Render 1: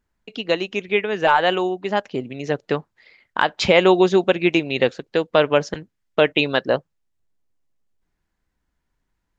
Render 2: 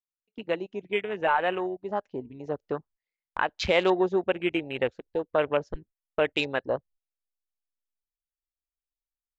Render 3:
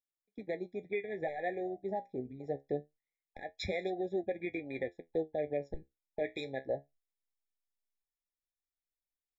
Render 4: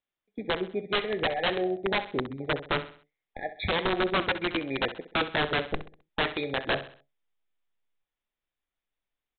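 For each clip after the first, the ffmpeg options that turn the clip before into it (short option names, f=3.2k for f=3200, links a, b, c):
-af "afwtdn=0.0501,agate=range=-17dB:threshold=-44dB:ratio=16:detection=peak,asubboost=boost=11:cutoff=51,volume=-7.5dB"
-af "alimiter=limit=-20dB:level=0:latency=1:release=239,flanger=delay=8.7:depth=7.6:regen=58:speed=0.24:shape=triangular,afftfilt=real='re*eq(mod(floor(b*sr/1024/830),2),0)':imag='im*eq(mod(floor(b*sr/1024/830),2),0)':win_size=1024:overlap=0.75"
-af "aresample=8000,aeval=exprs='(mod(28.2*val(0)+1,2)-1)/28.2':c=same,aresample=44100,aecho=1:1:65|130|195|260:0.224|0.0895|0.0358|0.0143,volume=9dB"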